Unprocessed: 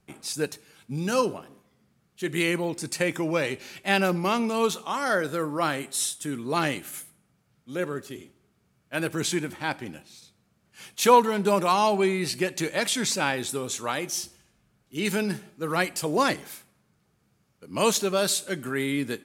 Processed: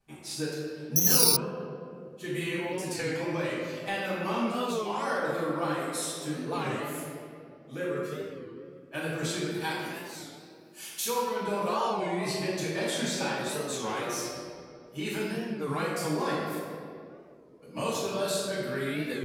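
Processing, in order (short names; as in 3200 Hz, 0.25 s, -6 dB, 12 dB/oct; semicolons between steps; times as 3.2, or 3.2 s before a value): 9.54–11.05 RIAA curve recording; reverb removal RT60 0.78 s; compressor 6:1, threshold -26 dBFS, peak gain reduction 14 dB; reverb RT60 2.6 s, pre-delay 3 ms, DRR -11.5 dB; 0.96–1.37 careless resampling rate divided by 8×, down none, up zero stuff; record warp 33 1/3 rpm, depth 160 cents; gain -14 dB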